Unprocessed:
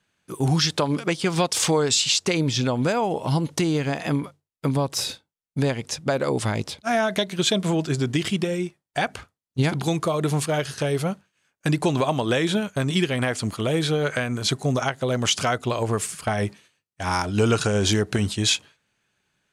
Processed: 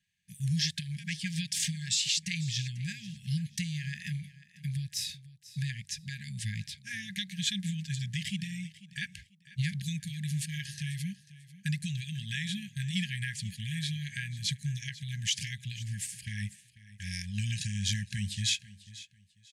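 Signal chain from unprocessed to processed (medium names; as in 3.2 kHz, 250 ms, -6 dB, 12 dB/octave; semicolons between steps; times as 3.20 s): brick-wall FIR band-stop 210–1600 Hz; on a send: feedback delay 493 ms, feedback 26%, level -18 dB; on the sum: trim -8 dB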